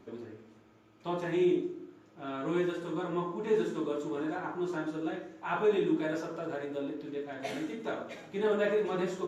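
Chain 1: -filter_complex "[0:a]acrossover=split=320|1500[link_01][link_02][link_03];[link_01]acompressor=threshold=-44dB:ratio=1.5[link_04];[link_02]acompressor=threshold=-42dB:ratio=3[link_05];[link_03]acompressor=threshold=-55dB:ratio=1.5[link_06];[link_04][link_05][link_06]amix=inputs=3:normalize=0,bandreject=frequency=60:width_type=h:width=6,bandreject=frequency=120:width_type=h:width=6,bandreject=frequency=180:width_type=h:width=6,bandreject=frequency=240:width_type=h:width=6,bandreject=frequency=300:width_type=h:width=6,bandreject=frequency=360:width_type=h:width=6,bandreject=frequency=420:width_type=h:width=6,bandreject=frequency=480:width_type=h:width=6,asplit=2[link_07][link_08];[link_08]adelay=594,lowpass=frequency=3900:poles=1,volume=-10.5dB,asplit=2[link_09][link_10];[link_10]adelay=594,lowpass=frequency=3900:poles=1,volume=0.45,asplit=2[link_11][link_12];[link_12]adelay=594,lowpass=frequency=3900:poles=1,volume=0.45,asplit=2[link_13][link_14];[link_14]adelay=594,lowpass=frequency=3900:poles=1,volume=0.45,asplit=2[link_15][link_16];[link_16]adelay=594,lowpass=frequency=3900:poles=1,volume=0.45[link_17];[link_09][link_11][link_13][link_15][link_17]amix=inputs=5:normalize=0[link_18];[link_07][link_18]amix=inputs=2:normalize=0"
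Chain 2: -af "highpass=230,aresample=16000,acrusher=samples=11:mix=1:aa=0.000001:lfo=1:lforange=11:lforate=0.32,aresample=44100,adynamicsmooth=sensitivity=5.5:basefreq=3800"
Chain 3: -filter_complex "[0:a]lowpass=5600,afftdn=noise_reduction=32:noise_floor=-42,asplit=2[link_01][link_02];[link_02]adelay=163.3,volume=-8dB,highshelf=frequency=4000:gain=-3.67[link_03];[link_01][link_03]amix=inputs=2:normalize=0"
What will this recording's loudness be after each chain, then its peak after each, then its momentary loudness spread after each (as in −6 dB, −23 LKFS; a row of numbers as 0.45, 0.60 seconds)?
−39.5, −33.5, −32.5 LKFS; −25.0, −17.5, −16.0 dBFS; 9, 13, 12 LU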